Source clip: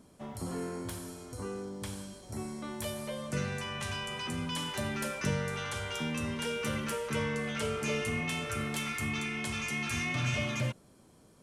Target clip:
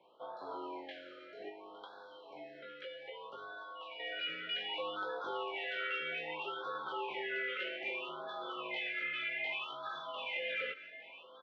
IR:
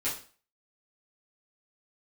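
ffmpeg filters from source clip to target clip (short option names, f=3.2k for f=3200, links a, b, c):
-filter_complex "[0:a]highpass=f=580:t=q:w=0.5412,highpass=f=580:t=q:w=1.307,lowpass=f=3.4k:t=q:w=0.5176,lowpass=f=3.4k:t=q:w=0.7071,lowpass=f=3.4k:t=q:w=1.932,afreqshift=-76,alimiter=level_in=8.5dB:limit=-24dB:level=0:latency=1:release=52,volume=-8.5dB,aecho=1:1:860:0.188,flanger=delay=18:depth=2.1:speed=0.26,asettb=1/sr,asplit=3[a][b][c];[a]atrim=end=1.494[d];[b]atrim=start=1.49:end=4,asetpts=PTS-STARTPTS,afade=t=in:d=0.004:c=qsin,afade=t=out:st=2.506:d=0.004:c=qsin,acompressor=threshold=-55dB:ratio=2[e];[c]atrim=start=3.996[f];[d][e]acrossfade=d=0.004:c1=hsin:c2=qsin[g];[g][f]acrossfade=d=0.004:c1=qsin:c2=hsin,afftfilt=real='re*(1-between(b*sr/1024,870*pow(2400/870,0.5+0.5*sin(2*PI*0.63*pts/sr))/1.41,870*pow(2400/870,0.5+0.5*sin(2*PI*0.63*pts/sr))*1.41))':imag='im*(1-between(b*sr/1024,870*pow(2400/870,0.5+0.5*sin(2*PI*0.63*pts/sr))/1.41,870*pow(2400/870,0.5+0.5*sin(2*PI*0.63*pts/sr))*1.41))':win_size=1024:overlap=0.75,volume=6.5dB"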